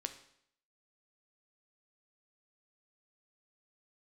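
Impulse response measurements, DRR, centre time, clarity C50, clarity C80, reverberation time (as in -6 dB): 7.5 dB, 9 ms, 11.5 dB, 14.5 dB, 0.70 s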